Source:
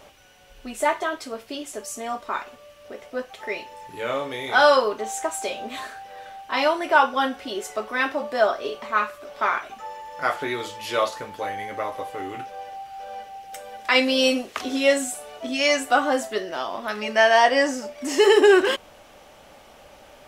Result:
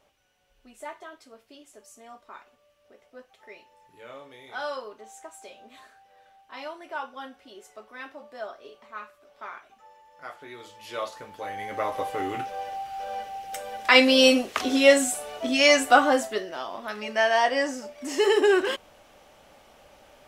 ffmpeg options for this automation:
-af "volume=2.5dB,afade=t=in:st=10.43:d=1.01:silence=0.298538,afade=t=in:st=11.44:d=0.61:silence=0.354813,afade=t=out:st=15.94:d=0.59:silence=0.398107"

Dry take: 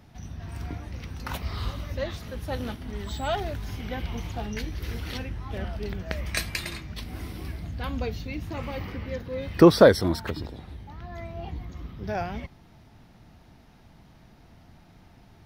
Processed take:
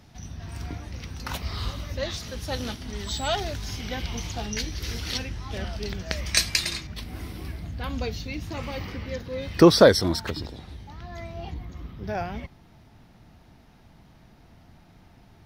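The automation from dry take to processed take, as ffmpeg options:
-af "asetnsamples=n=441:p=0,asendcmd='2.03 equalizer g 13;6.87 equalizer g 1.5;7.9 equalizer g 8;11.54 equalizer g 0',equalizer=f=5.6k:t=o:w=1.6:g=6.5"

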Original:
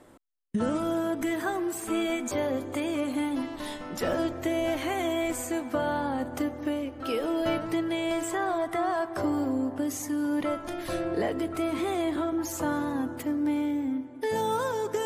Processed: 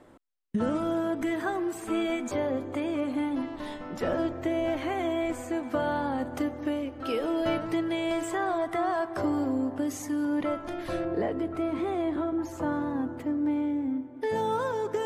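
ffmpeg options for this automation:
-af "asetnsamples=n=441:p=0,asendcmd='2.37 lowpass f 2100;5.63 lowpass f 5500;10.25 lowpass f 3000;11.05 lowpass f 1300;14.17 lowpass f 2600',lowpass=f=3.5k:p=1"

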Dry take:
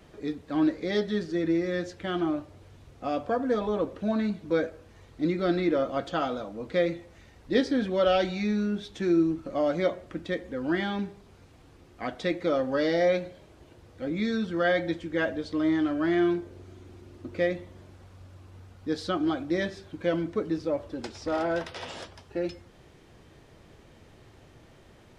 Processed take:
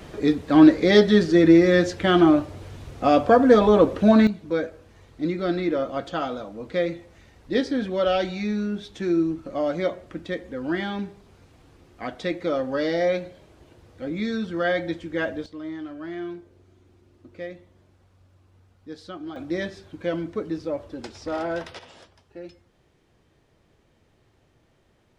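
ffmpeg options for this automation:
-af "asetnsamples=n=441:p=0,asendcmd='4.27 volume volume 1dB;15.46 volume volume -9dB;19.36 volume volume 0dB;21.79 volume volume -9dB',volume=12dB"

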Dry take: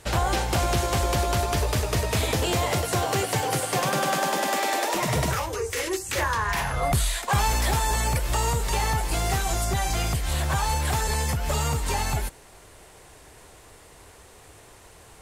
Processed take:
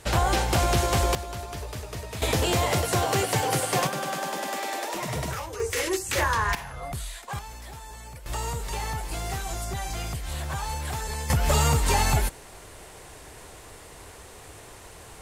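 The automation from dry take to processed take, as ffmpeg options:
-af "asetnsamples=n=441:p=0,asendcmd='1.15 volume volume -11dB;2.22 volume volume 0.5dB;3.87 volume volume -6dB;5.6 volume volume 1dB;6.55 volume volume -11dB;7.39 volume volume -18dB;8.26 volume volume -6.5dB;11.3 volume volume 4dB',volume=1dB"

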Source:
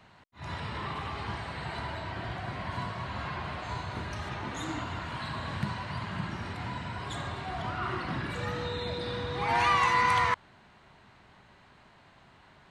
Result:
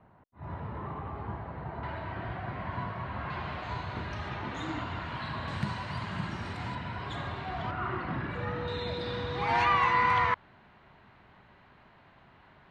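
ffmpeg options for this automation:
-af "asetnsamples=n=441:p=0,asendcmd='1.83 lowpass f 2100;3.3 lowpass f 4000;5.48 lowpass f 9600;6.75 lowpass f 3800;7.71 lowpass f 2200;8.68 lowpass f 5100;9.64 lowpass f 2900',lowpass=1k"

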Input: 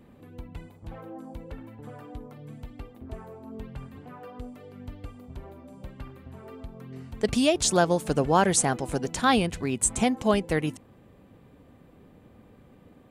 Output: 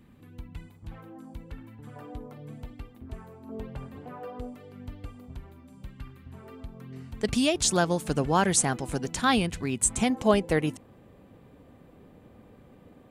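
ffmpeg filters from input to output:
-af "asetnsamples=n=441:p=0,asendcmd='1.96 equalizer g 1.5;2.74 equalizer g -7;3.49 equalizer g 5;4.55 equalizer g -2.5;5.37 equalizer g -12.5;6.32 equalizer g -4.5;10.1 equalizer g 2',equalizer=f=570:t=o:w=1.5:g=-9.5"

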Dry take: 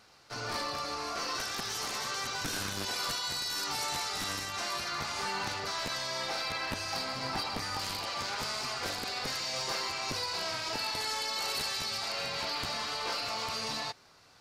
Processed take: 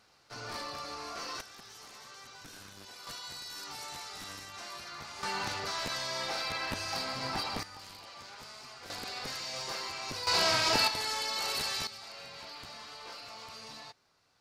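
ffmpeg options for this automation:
-af "asetnsamples=n=441:p=0,asendcmd='1.41 volume volume -15dB;3.07 volume volume -9dB;5.23 volume volume -0.5dB;7.63 volume volume -13dB;8.9 volume volume -4dB;10.27 volume volume 8dB;10.88 volume volume 0dB;11.87 volume volume -11.5dB',volume=-5dB"

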